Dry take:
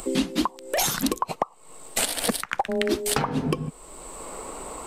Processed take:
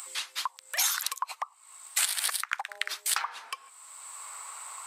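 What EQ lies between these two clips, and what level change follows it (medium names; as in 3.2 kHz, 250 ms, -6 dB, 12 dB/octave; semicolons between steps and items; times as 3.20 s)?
high-pass 1.1 kHz 24 dB/octave; peaking EQ 2.9 kHz -3 dB 0.33 oct; -1.0 dB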